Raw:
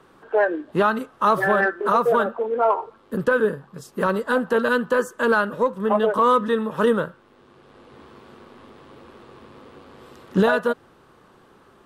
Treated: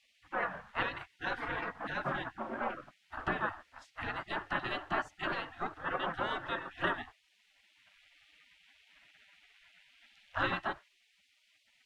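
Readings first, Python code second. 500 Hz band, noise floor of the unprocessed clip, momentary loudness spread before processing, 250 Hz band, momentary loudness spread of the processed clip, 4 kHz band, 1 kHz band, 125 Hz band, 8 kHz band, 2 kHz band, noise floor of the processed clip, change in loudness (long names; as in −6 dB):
−22.0 dB, −54 dBFS, 8 LU, −19.0 dB, 6 LU, −6.0 dB, −14.5 dB, −14.0 dB, can't be measured, −11.0 dB, −72 dBFS, −15.5 dB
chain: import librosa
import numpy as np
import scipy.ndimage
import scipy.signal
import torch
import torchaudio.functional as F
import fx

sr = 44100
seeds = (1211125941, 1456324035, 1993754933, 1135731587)

y = fx.dmg_noise_colour(x, sr, seeds[0], colour='blue', level_db=-54.0)
y = scipy.signal.sosfilt(scipy.signal.butter(2, 1600.0, 'lowpass', fs=sr, output='sos'), y)
y = fx.peak_eq(y, sr, hz=240.0, db=-8.0, octaves=0.62)
y = fx.hum_notches(y, sr, base_hz=60, count=6)
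y = fx.spec_gate(y, sr, threshold_db=-25, keep='weak')
y = F.gain(torch.from_numpy(y), 7.0).numpy()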